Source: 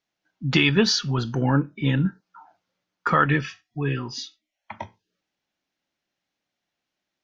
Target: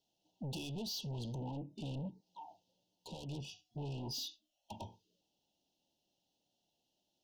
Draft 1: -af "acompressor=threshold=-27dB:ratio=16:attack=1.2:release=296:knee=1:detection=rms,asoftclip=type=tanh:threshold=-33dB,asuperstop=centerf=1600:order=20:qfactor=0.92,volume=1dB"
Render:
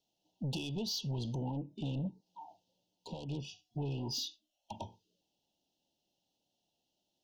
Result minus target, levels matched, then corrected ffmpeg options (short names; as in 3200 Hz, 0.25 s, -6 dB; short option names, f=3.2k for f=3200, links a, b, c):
soft clip: distortion -5 dB
-af "acompressor=threshold=-27dB:ratio=16:attack=1.2:release=296:knee=1:detection=rms,asoftclip=type=tanh:threshold=-40dB,asuperstop=centerf=1600:order=20:qfactor=0.92,volume=1dB"